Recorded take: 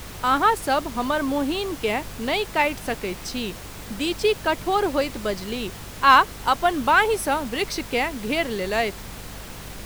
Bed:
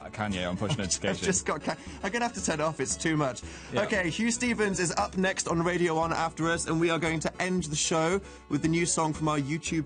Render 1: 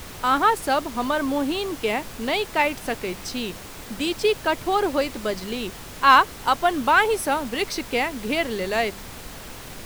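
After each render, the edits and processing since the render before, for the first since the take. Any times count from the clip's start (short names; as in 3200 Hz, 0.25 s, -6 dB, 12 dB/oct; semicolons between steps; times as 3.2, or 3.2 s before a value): de-hum 50 Hz, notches 4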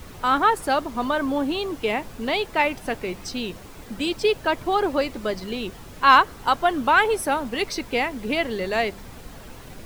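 denoiser 8 dB, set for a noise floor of -39 dBFS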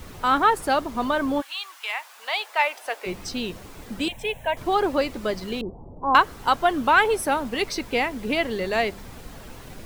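1.4–3.05 HPF 1300 Hz -> 480 Hz 24 dB/oct; 4.08–4.57 fixed phaser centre 1300 Hz, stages 6; 5.61–6.15 steep low-pass 930 Hz 48 dB/oct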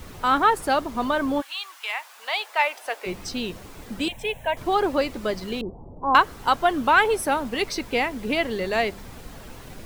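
nothing audible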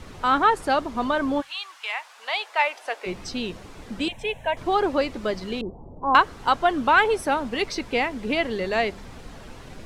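Bessel low-pass 6800 Hz, order 2; notches 50/100/150 Hz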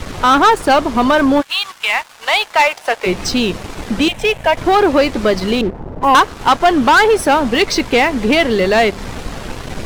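in parallel at -2.5 dB: compressor, threshold -31 dBFS, peak gain reduction 18.5 dB; on the sum: sample leveller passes 3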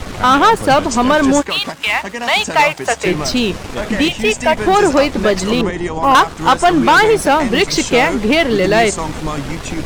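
add bed +4.5 dB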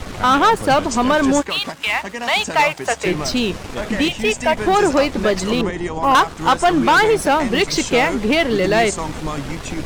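gain -3.5 dB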